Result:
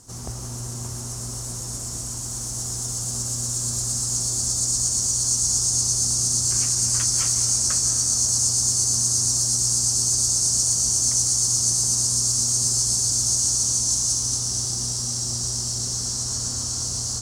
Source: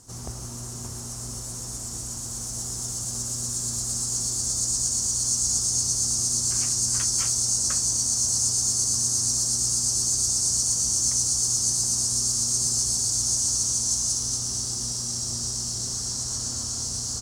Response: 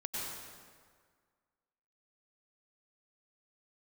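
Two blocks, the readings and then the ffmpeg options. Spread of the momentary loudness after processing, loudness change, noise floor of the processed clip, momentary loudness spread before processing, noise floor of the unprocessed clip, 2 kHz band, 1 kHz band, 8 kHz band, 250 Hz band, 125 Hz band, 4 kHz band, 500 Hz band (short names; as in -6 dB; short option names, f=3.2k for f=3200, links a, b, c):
11 LU, +3.0 dB, -32 dBFS, 11 LU, -35 dBFS, n/a, +3.0 dB, +3.0 dB, +2.0 dB, +5.0 dB, +3.0 dB, +3.0 dB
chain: -filter_complex "[0:a]asplit=2[a][b];[1:a]atrim=start_sample=2205,asetrate=29106,aresample=44100[c];[b][c]afir=irnorm=-1:irlink=0,volume=-9.5dB[d];[a][d]amix=inputs=2:normalize=0"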